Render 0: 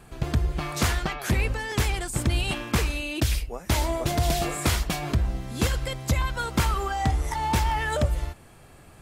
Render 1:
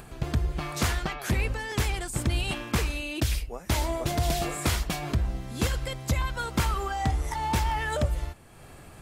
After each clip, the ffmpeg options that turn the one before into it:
ffmpeg -i in.wav -af "acompressor=mode=upward:threshold=-37dB:ratio=2.5,volume=-2.5dB" out.wav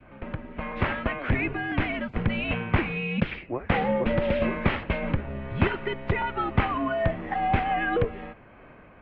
ffmpeg -i in.wav -af "adynamicequalizer=threshold=0.00562:dfrequency=1200:dqfactor=0.71:tfrequency=1200:tqfactor=0.71:attack=5:release=100:ratio=0.375:range=3:mode=cutabove:tftype=bell,dynaudnorm=framelen=120:gausssize=13:maxgain=8.5dB,highpass=frequency=170:width_type=q:width=0.5412,highpass=frequency=170:width_type=q:width=1.307,lowpass=frequency=2700:width_type=q:width=0.5176,lowpass=frequency=2700:width_type=q:width=0.7071,lowpass=frequency=2700:width_type=q:width=1.932,afreqshift=-120" out.wav

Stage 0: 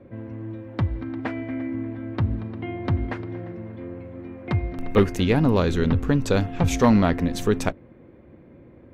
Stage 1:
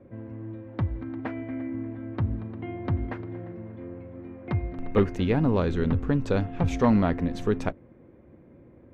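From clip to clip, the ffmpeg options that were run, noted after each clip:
ffmpeg -i in.wav -af "aemphasis=mode=reproduction:type=75fm,volume=-4.5dB" out.wav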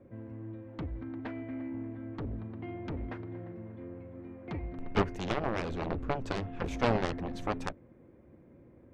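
ffmpeg -i in.wav -af "aeval=exprs='0.335*(cos(1*acos(clip(val(0)/0.335,-1,1)))-cos(1*PI/2))+0.0944*(cos(3*acos(clip(val(0)/0.335,-1,1)))-cos(3*PI/2))+0.0473*(cos(7*acos(clip(val(0)/0.335,-1,1)))-cos(7*PI/2))':channel_layout=same,volume=-3dB" out.wav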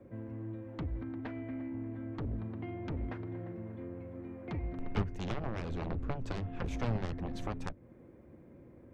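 ffmpeg -i in.wav -filter_complex "[0:a]acrossover=split=180[link_01][link_02];[link_02]acompressor=threshold=-42dB:ratio=3[link_03];[link_01][link_03]amix=inputs=2:normalize=0,volume=1.5dB" out.wav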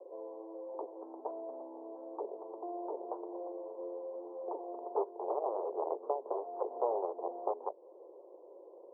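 ffmpeg -i in.wav -af "asuperpass=centerf=620:order=12:qfactor=0.98,volume=9dB" out.wav

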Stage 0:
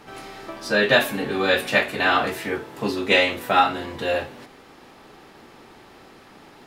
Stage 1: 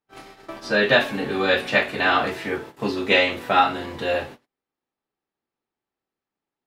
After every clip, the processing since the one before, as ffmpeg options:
ffmpeg -i in.wav -filter_complex "[0:a]agate=range=-41dB:threshold=-37dB:ratio=16:detection=peak,acrossover=split=6000[link_01][link_02];[link_02]acompressor=threshold=-52dB:ratio=4:attack=1:release=60[link_03];[link_01][link_03]amix=inputs=2:normalize=0" out.wav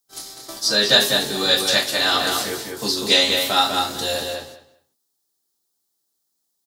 ffmpeg -i in.wav -filter_complex "[0:a]aexciter=amount=11.2:drive=6.6:freq=3800,asplit=2[link_01][link_02];[link_02]adelay=198,lowpass=frequency=4100:poles=1,volume=-3.5dB,asplit=2[link_03][link_04];[link_04]adelay=198,lowpass=frequency=4100:poles=1,volume=0.18,asplit=2[link_05][link_06];[link_06]adelay=198,lowpass=frequency=4100:poles=1,volume=0.18[link_07];[link_03][link_05][link_07]amix=inputs=3:normalize=0[link_08];[link_01][link_08]amix=inputs=2:normalize=0,volume=-3dB" out.wav

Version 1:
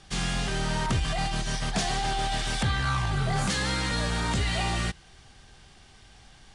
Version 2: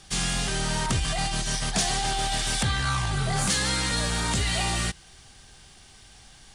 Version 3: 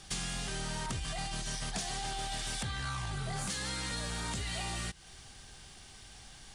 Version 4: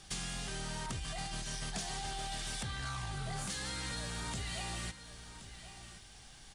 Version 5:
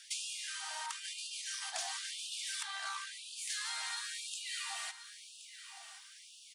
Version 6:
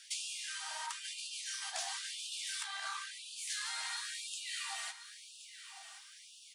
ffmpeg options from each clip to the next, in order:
ffmpeg -i in.wav -af "aemphasis=mode=production:type=50kf" out.wav
ffmpeg -i in.wav -af "acompressor=threshold=-33dB:ratio=6,volume=-1.5dB" out.wav
ffmpeg -i in.wav -af "aecho=1:1:1074:0.224,volume=-3dB" out.wav
ffmpeg -i in.wav -af "afftfilt=real='re*gte(b*sr/1024,620*pow(2500/620,0.5+0.5*sin(2*PI*0.98*pts/sr)))':imag='im*gte(b*sr/1024,620*pow(2500/620,0.5+0.5*sin(2*PI*0.98*pts/sr)))':win_size=1024:overlap=0.75,volume=2dB" out.wav
ffmpeg -i in.wav -af "flanger=delay=7.2:depth=9.5:regen=-36:speed=0.94:shape=sinusoidal,volume=3.5dB" out.wav

